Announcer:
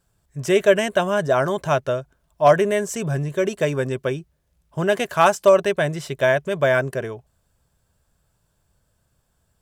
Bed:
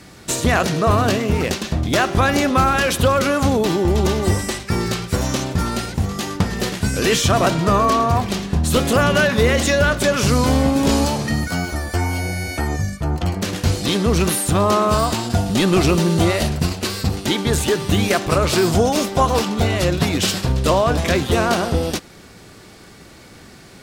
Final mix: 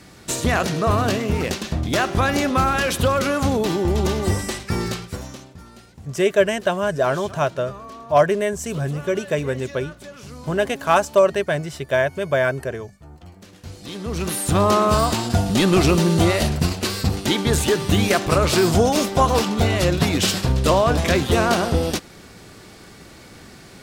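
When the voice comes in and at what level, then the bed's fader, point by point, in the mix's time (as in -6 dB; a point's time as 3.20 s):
5.70 s, -1.0 dB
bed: 4.87 s -3 dB
5.56 s -22 dB
13.54 s -22 dB
14.57 s -0.5 dB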